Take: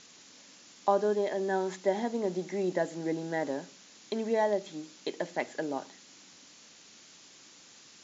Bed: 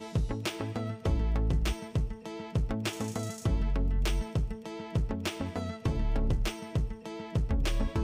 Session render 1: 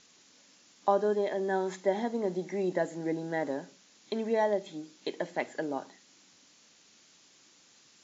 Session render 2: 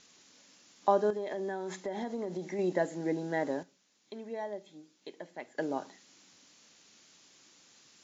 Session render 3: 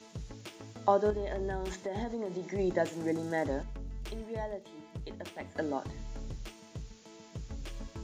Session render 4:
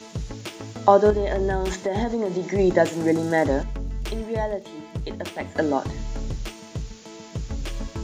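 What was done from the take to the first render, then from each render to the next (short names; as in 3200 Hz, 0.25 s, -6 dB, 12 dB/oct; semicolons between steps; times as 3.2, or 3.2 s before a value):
noise print and reduce 6 dB
1.1–2.59 compressor, threshold -32 dBFS; 3.63–5.58 gain -11 dB
add bed -13 dB
gain +11.5 dB; limiter -3 dBFS, peak gain reduction 1 dB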